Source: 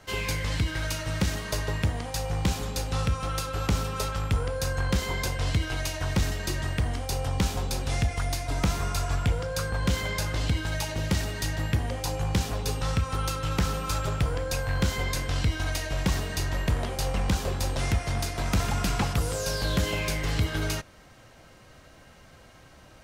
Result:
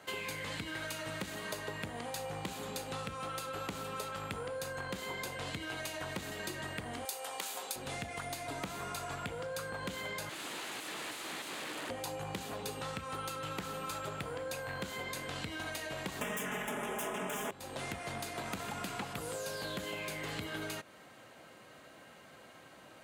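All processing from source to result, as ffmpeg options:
-filter_complex "[0:a]asettb=1/sr,asplit=3[s0][s1][s2];[s0]atrim=end=7.054[s3];[s1]atrim=start=7.05:end=7.76,asetpts=PTS-STARTPTS,afade=t=in:d=0.004:c=qsin,afade=t=out:st=0.706:d=0.004:c=qsin,highpass=560,aemphasis=mode=production:type=cd[s4];[s2]atrim=start=7.756[s5];[s3][s4]acrossfade=d=0.004:c1=hsin:c2=qsin[s6];[s6][s5]acrossfade=d=0.004:c1=qsin:c2=hsin,asettb=1/sr,asplit=3[s7][s8][s9];[s7]atrim=end=10.294[s10];[s8]atrim=start=10.29:end=11.9,asetpts=PTS-STARTPTS,afade=t=in:d=0.004:c=qsin,afade=t=out:st=1.606:d=0.004:c=qsin,aeval=exprs='(mod(42.2*val(0)+1,2)-1)/42.2':c=same,adynamicsmooth=sensitivity=4.5:basefreq=7600,equalizer=f=310:t=o:w=0.22:g=7[s11];[s9]atrim=start=11.896[s12];[s10][s11]acrossfade=d=0.004:c1=hsin:c2=qsin[s13];[s13][s12]acrossfade=d=0.004:c1=qsin:c2=hsin,asettb=1/sr,asplit=3[s14][s15][s16];[s14]atrim=end=16.214[s17];[s15]atrim=start=16.21:end=17.51,asetpts=PTS-STARTPTS,afade=t=in:d=0.004:c=qsin,afade=t=out:st=1.296:d=0.004:c=qsin,aeval=exprs='0.158*sin(PI/2*5.01*val(0)/0.158)':c=same,asuperstop=centerf=4300:order=4:qfactor=2,aecho=1:1:4.8:0.92,atrim=end_sample=57330[s18];[s16]atrim=start=17.506[s19];[s17][s18]acrossfade=d=0.004:c1=hsin:c2=qsin[s20];[s20][s19]acrossfade=d=0.004:c1=qsin:c2=hsin,highpass=210,equalizer=f=5500:w=3.4:g=-9,acompressor=threshold=0.0158:ratio=6,volume=0.891"

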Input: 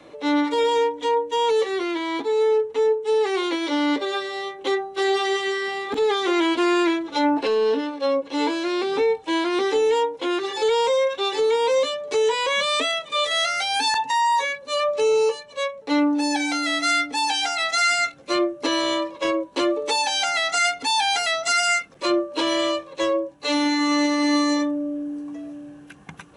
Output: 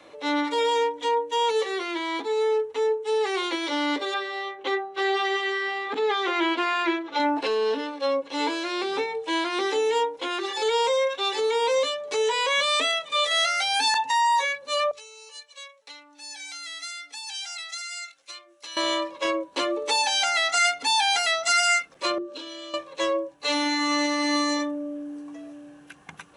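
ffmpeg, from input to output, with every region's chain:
-filter_complex "[0:a]asettb=1/sr,asplit=3[s0][s1][s2];[s0]atrim=end=4.144[s3];[s1]atrim=start=4.14:end=7.2,asetpts=PTS-STARTPTS,afade=t=in:d=0.004:c=qsin,afade=t=out:st=3.056:d=0.004:c=qsin,highpass=150,lowpass=2300,aemphasis=mode=production:type=75kf[s4];[s2]atrim=start=7.196[s5];[s3][s4]acrossfade=d=0.004:c1=hsin:c2=qsin[s6];[s6][s5]acrossfade=d=0.004:c1=qsin:c2=hsin,asettb=1/sr,asplit=3[s7][s8][s9];[s7]atrim=end=14.914[s10];[s8]atrim=start=14.91:end=18.77,asetpts=PTS-STARTPTS,afade=t=in:d=0.004:c=qsin,afade=t=out:st=3.856:d=0.004:c=qsin,acompressor=threshold=0.0501:ratio=10:attack=3.2:release=140:knee=1:detection=peak,bandpass=f=7300:t=q:w=0.54,aeval=exprs='val(0)+0.000562*(sin(2*PI*50*n/s)+sin(2*PI*2*50*n/s)/2+sin(2*PI*3*50*n/s)/3+sin(2*PI*4*50*n/s)/4+sin(2*PI*5*50*n/s)/5)':c=same[s11];[s9]atrim=start=18.766[s12];[s10][s11]acrossfade=d=0.004:c1=hsin:c2=qsin[s13];[s13][s12]acrossfade=d=0.004:c1=qsin:c2=hsin,asettb=1/sr,asplit=3[s14][s15][s16];[s14]atrim=end=22.184[s17];[s15]atrim=start=22.18:end=22.74,asetpts=PTS-STARTPTS,afade=t=in:d=0.004:c=qsin,afade=t=out:st=0.556:d=0.004:c=qsin,acompressor=threshold=0.0282:ratio=16:attack=3.2:release=140:knee=1:detection=peak,highpass=f=140:w=0.5412,highpass=f=140:w=1.3066,equalizer=f=270:t=q:w=4:g=5,equalizer=f=730:t=q:w=4:g=-8,equalizer=f=1000:t=q:w=4:g=-8,equalizer=f=2000:t=q:w=4:g=-8,equalizer=f=3700:t=q:w=4:g=4,lowpass=f=8400:w=0.5412,lowpass=f=8400:w=1.3066[s18];[s16]atrim=start=22.736[s19];[s17][s18]acrossfade=d=0.004:c1=hsin:c2=qsin[s20];[s20][s19]acrossfade=d=0.004:c1=qsin:c2=hsin,lowshelf=f=410:g=-8.5,bandreject=f=50:t=h:w=6,bandreject=f=100:t=h:w=6,bandreject=f=150:t=h:w=6,bandreject=f=200:t=h:w=6,bandreject=f=250:t=h:w=6,bandreject=f=300:t=h:w=6,bandreject=f=350:t=h:w=6,bandreject=f=400:t=h:w=6,bandreject=f=450:t=h:w=6"

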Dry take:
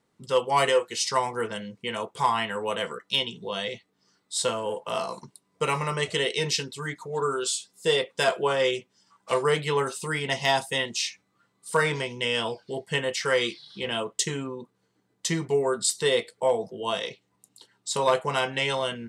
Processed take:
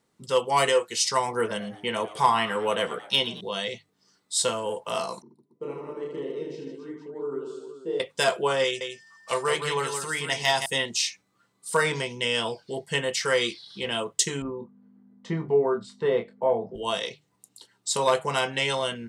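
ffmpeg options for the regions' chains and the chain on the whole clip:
-filter_complex "[0:a]asettb=1/sr,asplit=3[s0][s1][s2];[s0]atrim=end=1.284[s3];[s1]atrim=start=1.28:end=3.41,asetpts=PTS-STARTPTS,afade=t=in:d=0.004:c=qsin,afade=t=out:st=2.126:d=0.004:c=qsin,equalizer=f=480:w=0.3:g=3.5,bandreject=f=7300:w=6.7,asplit=6[s4][s5][s6][s7][s8][s9];[s5]adelay=112,afreqshift=100,volume=0.133[s10];[s6]adelay=224,afreqshift=200,volume=0.0759[s11];[s7]adelay=336,afreqshift=300,volume=0.0432[s12];[s8]adelay=448,afreqshift=400,volume=0.0248[s13];[s9]adelay=560,afreqshift=500,volume=0.0141[s14];[s4][s10][s11][s12][s13][s14]amix=inputs=6:normalize=0,atrim=end_sample=93933[s15];[s2]atrim=start=3.406[s16];[s3][s15]acrossfade=d=0.004:c1=hsin:c2=qsin[s17];[s17][s16]acrossfade=d=0.004:c1=qsin:c2=hsin,asettb=1/sr,asplit=3[s18][s19][s20];[s18]atrim=end=5.224[s21];[s19]atrim=start=5.22:end=8,asetpts=PTS-STARTPTS,afade=t=in:d=0.004:c=qsin,afade=t=out:st=2.776:d=0.004:c=qsin,bandpass=f=320:t=q:w=3.2,aecho=1:1:30|78|154.8|277.7|474.3:0.794|0.631|0.501|0.398|0.316,atrim=end_sample=122598[s22];[s20]atrim=start=7.996[s23];[s21][s22]acrossfade=d=0.004:c1=hsin:c2=qsin[s24];[s24][s23]acrossfade=d=0.004:c1=qsin:c2=hsin,asettb=1/sr,asplit=3[s25][s26][s27];[s25]atrim=end=8.644[s28];[s26]atrim=start=8.64:end=10.66,asetpts=PTS-STARTPTS,afade=t=in:d=0.004:c=qsin,afade=t=out:st=2.016:d=0.004:c=qsin,equalizer=f=230:w=0.5:g=-6,aecho=1:1:168:0.473,atrim=end_sample=89082,aeval=exprs='val(0)+0.00251*sin(2*PI*1800*n/s)':c=same[s29];[s27]atrim=start=10.656[s30];[s28][s29]acrossfade=d=0.004:c1=hsin:c2=qsin[s31];[s31][s30]acrossfade=d=0.004:c1=qsin:c2=hsin,asettb=1/sr,asplit=3[s32][s33][s34];[s32]atrim=end=14.424[s35];[s33]atrim=start=14.42:end=16.75,asetpts=PTS-STARTPTS,afade=t=in:d=0.004:c=qsin,afade=t=out:st=2.326:d=0.004:c=qsin,lowpass=1300,asplit=2[s36][s37];[s37]adelay=26,volume=0.447[s38];[s36][s38]amix=inputs=2:normalize=0,atrim=end_sample=102753,aeval=exprs='val(0)+0.00708*(sin(2*PI*50*n/s)+sin(2*PI*2*50*n/s)/2+sin(2*PI*3*50*n/s)/3+sin(2*PI*4*50*n/s)/4+sin(2*PI*5*50*n/s)/5)':c=same[s39];[s34]atrim=start=16.746[s40];[s35][s39]acrossfade=d=0.004:c1=hsin:c2=qsin[s41];[s41][s40]acrossfade=d=0.004:c1=qsin:c2=hsin,bass=f=250:g=0,treble=f=4000:g=4,bandreject=f=50:t=h:w=6,bandreject=f=100:t=h:w=6,bandreject=f=150:t=h:w=6"

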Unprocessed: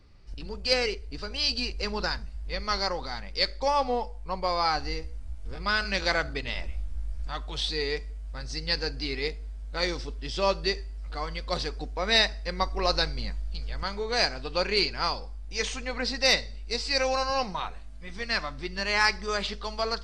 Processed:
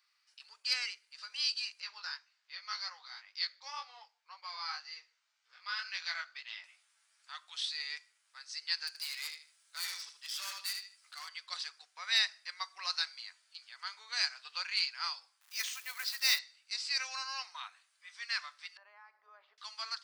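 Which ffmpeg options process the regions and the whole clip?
-filter_complex "[0:a]asettb=1/sr,asplit=3[s0][s1][s2];[s0]atrim=end=1.804[s3];[s1]atrim=start=1.8:end=6.64,asetpts=PTS-STARTPTS,afade=t=in:d=0.004:c=qsin,afade=t=out:st=4.836:d=0.004:c=qsin,lowpass=f=6200:w=0.5412,lowpass=f=6200:w=1.3066,flanger=delay=17:depth=5.4:speed=1.9[s4];[s2]atrim=start=6.636[s5];[s3][s4]acrossfade=d=0.004:c1=hsin:c2=qsin[s6];[s6][s5]acrossfade=d=0.004:c1=qsin:c2=hsin,asettb=1/sr,asplit=3[s7][s8][s9];[s7]atrim=end=8.874[s10];[s8]atrim=start=8.87:end=11.29,asetpts=PTS-STARTPTS,afade=t=in:d=0.004:c=qsin,afade=t=out:st=2.416:d=0.004:c=qsin,highshelf=f=5000:g=9.5,aecho=1:1:77|154|231:0.335|0.0837|0.0209,atrim=end_sample=106722,asoftclip=type=hard:threshold=0.0422[s11];[s9]atrim=start=11.286[s12];[s10][s11]acrossfade=d=0.004:c1=hsin:c2=qsin[s13];[s13][s12]acrossfade=d=0.004:c1=qsin:c2=hsin,asettb=1/sr,asplit=3[s14][s15][s16];[s14]atrim=end=15.414[s17];[s15]atrim=start=15.41:end=16.39,asetpts=PTS-STARTPTS,afade=t=in:d=0.004:c=qsin,afade=t=out:st=0.976:d=0.004:c=qsin,equalizer=f=300:t=o:w=0.56:g=11.5,acrusher=bits=3:mode=log:mix=0:aa=0.000001[s18];[s16]atrim=start=16.386[s19];[s17][s18]acrossfade=d=0.004:c1=hsin:c2=qsin[s20];[s20][s19]acrossfade=d=0.004:c1=qsin:c2=hsin,asettb=1/sr,asplit=3[s21][s22][s23];[s21]atrim=end=18.774[s24];[s22]atrim=start=18.77:end=19.58,asetpts=PTS-STARTPTS,afade=t=in:d=0.004:c=qsin,afade=t=out:st=0.806:d=0.004:c=qsin,acompressor=threshold=0.0355:ratio=6:attack=3.2:release=140:knee=1:detection=peak,lowpass=f=620:t=q:w=1.7[s25];[s23]atrim=start=19.576[s26];[s24][s25]acrossfade=d=0.004:c1=hsin:c2=qsin[s27];[s27][s26]acrossfade=d=0.004:c1=qsin:c2=hsin,highpass=f=1200:w=0.5412,highpass=f=1200:w=1.3066,highshelf=f=8000:g=8.5,volume=0.422"

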